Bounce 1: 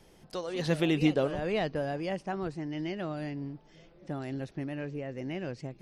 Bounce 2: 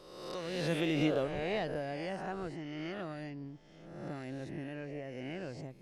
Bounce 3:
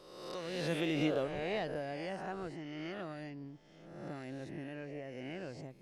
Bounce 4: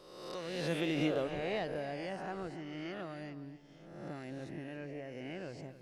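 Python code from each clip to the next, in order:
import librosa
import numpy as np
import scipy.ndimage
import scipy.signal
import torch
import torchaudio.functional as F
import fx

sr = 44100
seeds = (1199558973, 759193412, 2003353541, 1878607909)

y1 = fx.spec_swells(x, sr, rise_s=1.14)
y1 = y1 * librosa.db_to_amplitude(-7.0)
y2 = fx.low_shelf(y1, sr, hz=120.0, db=-4.5)
y2 = y2 * librosa.db_to_amplitude(-1.5)
y3 = y2 + 10.0 ** (-14.5 / 20.0) * np.pad(y2, (int(278 * sr / 1000.0), 0))[:len(y2)]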